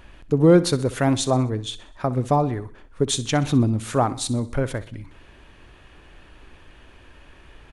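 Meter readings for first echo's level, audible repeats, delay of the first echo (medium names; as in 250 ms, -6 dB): -17.0 dB, 3, 63 ms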